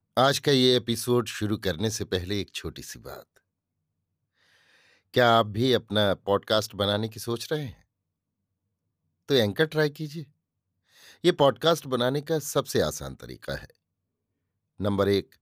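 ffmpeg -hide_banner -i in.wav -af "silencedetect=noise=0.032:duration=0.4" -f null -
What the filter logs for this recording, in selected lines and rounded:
silence_start: 3.14
silence_end: 5.16 | silence_duration: 2.03
silence_start: 7.69
silence_end: 9.30 | silence_duration: 1.61
silence_start: 10.21
silence_end: 11.24 | silence_duration: 1.04
silence_start: 13.65
silence_end: 14.81 | silence_duration: 1.16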